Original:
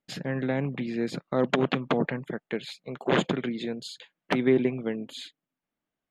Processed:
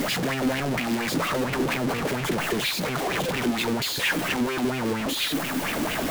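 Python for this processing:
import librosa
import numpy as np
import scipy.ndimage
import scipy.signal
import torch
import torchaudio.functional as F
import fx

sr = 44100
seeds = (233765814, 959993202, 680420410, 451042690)

y = np.sign(x) * np.sqrt(np.mean(np.square(x)))
y = fx.bell_lfo(y, sr, hz=4.3, low_hz=260.0, high_hz=2700.0, db=12)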